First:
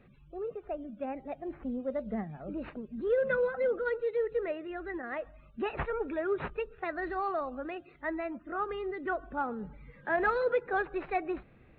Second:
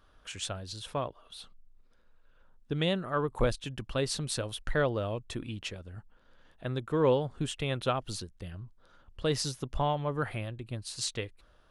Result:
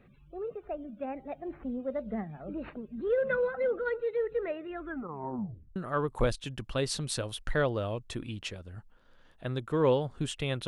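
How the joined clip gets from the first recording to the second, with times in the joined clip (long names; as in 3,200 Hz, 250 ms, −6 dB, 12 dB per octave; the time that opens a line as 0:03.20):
first
0:04.75: tape stop 1.01 s
0:05.76: continue with second from 0:02.96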